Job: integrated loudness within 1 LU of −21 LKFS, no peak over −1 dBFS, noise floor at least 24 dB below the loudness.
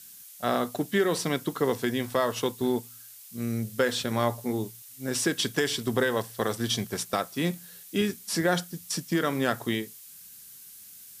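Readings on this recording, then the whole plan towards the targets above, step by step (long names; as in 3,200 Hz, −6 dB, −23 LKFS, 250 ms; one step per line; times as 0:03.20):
background noise floor −48 dBFS; target noise floor −53 dBFS; integrated loudness −28.5 LKFS; sample peak −10.0 dBFS; target loudness −21.0 LKFS
→ noise reduction from a noise print 6 dB
level +7.5 dB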